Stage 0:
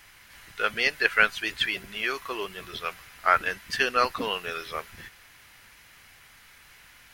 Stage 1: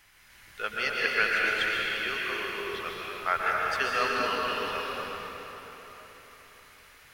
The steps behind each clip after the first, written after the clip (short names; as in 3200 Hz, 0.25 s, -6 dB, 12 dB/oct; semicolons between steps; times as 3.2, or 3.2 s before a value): reverb RT60 4.2 s, pre-delay 0.116 s, DRR -4.5 dB; gain -7 dB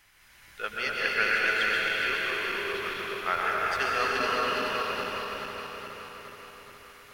regenerating reverse delay 0.21 s, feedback 74%, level -4.5 dB; gain -1.5 dB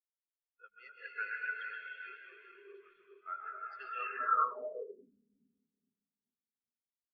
low-pass sweep 7300 Hz -> 250 Hz, 3.64–5.12; spectral expander 2.5:1; gain -8 dB